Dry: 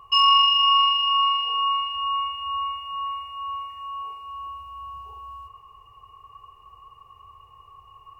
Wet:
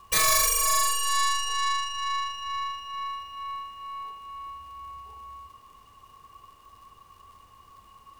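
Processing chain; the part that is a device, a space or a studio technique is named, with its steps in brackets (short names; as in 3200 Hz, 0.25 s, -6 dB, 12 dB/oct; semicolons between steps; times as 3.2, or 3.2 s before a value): record under a worn stylus (tracing distortion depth 0.48 ms; crackle; pink noise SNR 33 dB); gain -4 dB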